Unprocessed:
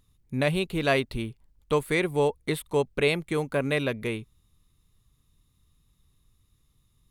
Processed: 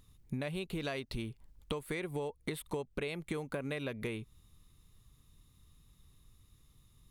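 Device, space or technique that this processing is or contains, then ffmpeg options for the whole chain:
serial compression, leveller first: -filter_complex "[0:a]asettb=1/sr,asplit=3[a][b][c];[a]atrim=end=0.794[d];[b]atrim=start=0.79:end=1.29,asetpts=PTS-STARTPTS,afade=t=in:d=0.004:c=qsin,afade=t=out:st=0.496:d=0.004:c=qsin,equalizer=f=5.6k:w=1.5:g=5.5[e];[c]atrim=start=1.286[f];[d][e]acrossfade=d=0.004:c1=hsin:c2=qsin[g];[g][f]acrossfade=d=0.004:c1=qsin:c2=hsin,acompressor=threshold=-28dB:ratio=2.5,acompressor=threshold=-38dB:ratio=6,volume=3dB"

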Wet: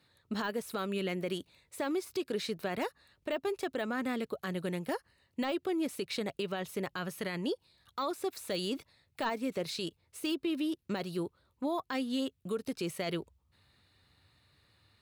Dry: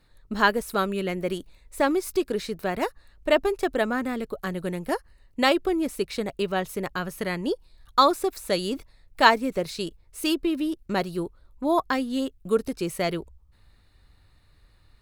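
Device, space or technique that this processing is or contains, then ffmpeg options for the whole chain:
broadcast voice chain: -af "highpass=f=85:w=0.5412,highpass=f=85:w=1.3066,deesser=0.7,acompressor=threshold=-24dB:ratio=4,equalizer=f=3.3k:t=o:w=1.3:g=5,alimiter=limit=-20.5dB:level=0:latency=1:release=22,volume=-4.5dB"

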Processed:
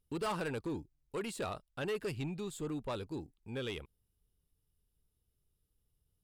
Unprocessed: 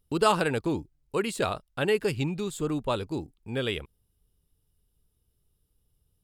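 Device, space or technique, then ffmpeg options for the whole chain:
saturation between pre-emphasis and de-emphasis: -af "highshelf=f=6k:g=7.5,asoftclip=type=tanh:threshold=-23.5dB,highshelf=f=6k:g=-7.5,volume=-7.5dB"

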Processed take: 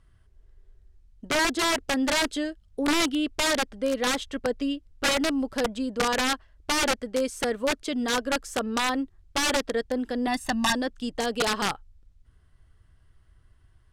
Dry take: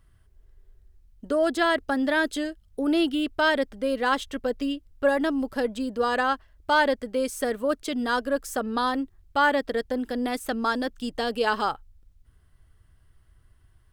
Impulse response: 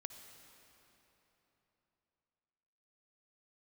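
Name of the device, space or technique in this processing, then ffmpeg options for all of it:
overflowing digital effects unit: -filter_complex "[0:a]aeval=exprs='(mod(7.5*val(0)+1,2)-1)/7.5':c=same,lowpass=8.6k,asettb=1/sr,asplit=3[a][b][c];[a]atrim=end=10.274[d];[b]atrim=start=10.27:end=10.75,asetpts=PTS-STARTPTS,afade=t=in:d=0.004:c=qsin,afade=t=out:st=0.476:d=0.004:c=qsin,aecho=1:1:1.1:0.92,atrim=end_sample=21168[e];[c]atrim=start=10.746[f];[d][e]acrossfade=d=0.004:c1=hsin:c2=qsin[g];[g][f]acrossfade=d=0.004:c1=qsin:c2=hsin"

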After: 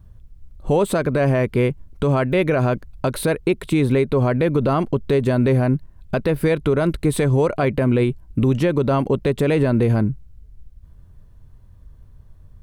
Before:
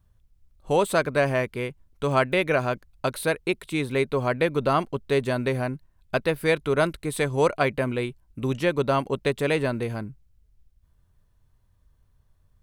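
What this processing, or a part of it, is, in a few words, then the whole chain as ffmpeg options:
mastering chain: -af "equalizer=f=820:t=o:w=2:g=-3.5,acompressor=threshold=-28dB:ratio=2,tiltshelf=f=1.4k:g=6,alimiter=level_in=19dB:limit=-1dB:release=50:level=0:latency=1,volume=-7.5dB"

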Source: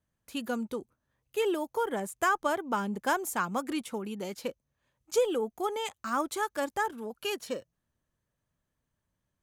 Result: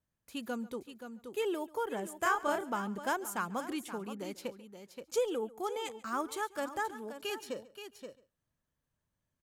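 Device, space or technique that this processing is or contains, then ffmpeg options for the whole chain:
ducked delay: -filter_complex "[0:a]asplit=3[a][b][c];[b]adelay=526,volume=-4.5dB[d];[c]apad=whole_len=438868[e];[d][e]sidechaincompress=threshold=-37dB:ratio=3:attack=16:release=1190[f];[a][f]amix=inputs=2:normalize=0,asettb=1/sr,asplit=3[g][h][i];[g]atrim=end=2.214[j];[h]atrim=start=2.21:end=2.65,asetpts=PTS-STARTPTS,afade=t=in:d=0.004:c=qsin,afade=t=out:st=0.436:d=0.004:c=qsin,asplit=2[k][l];[l]adelay=31,volume=-2.5dB[m];[k][m]amix=inputs=2:normalize=0,atrim=end_sample=19404[n];[i]atrim=start=2.646[o];[j][n]acrossfade=d=0.004:c1=hsin:c2=qsin[p];[p][o]acrossfade=d=0.004:c1=qsin:c2=hsin,aecho=1:1:140:0.0944,volume=-5dB"

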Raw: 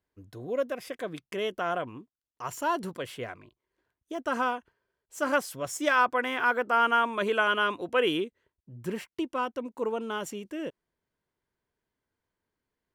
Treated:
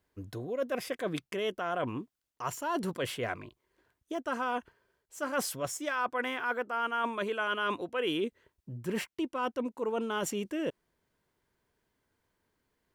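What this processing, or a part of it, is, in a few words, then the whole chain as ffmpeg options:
compression on the reversed sound: -af "areverse,acompressor=threshold=-37dB:ratio=6,areverse,volume=7dB"

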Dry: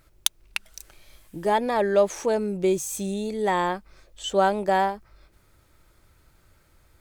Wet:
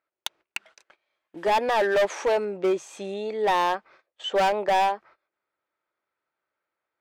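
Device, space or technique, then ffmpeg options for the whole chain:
walkie-talkie: -filter_complex "[0:a]asettb=1/sr,asplit=3[a][b][c];[a]atrim=end=1.374[d];[b]atrim=start=1.37:end=2.45,asetpts=PTS-STARTPTS,afade=t=in:d=0.004:c=qsin,afade=t=out:st=1.076:d=0.004:c=qsin,highshelf=f=4.6k:g=11.5[e];[c]atrim=start=2.446[f];[d][e]acrossfade=d=0.004:c1=hsin:c2=qsin[g];[g][f]acrossfade=d=0.004:c1=qsin:c2=hsin,highpass=520,lowpass=2.4k,asoftclip=type=hard:threshold=-24.5dB,agate=range=-23dB:threshold=-56dB:ratio=16:detection=peak,volume=6.5dB"

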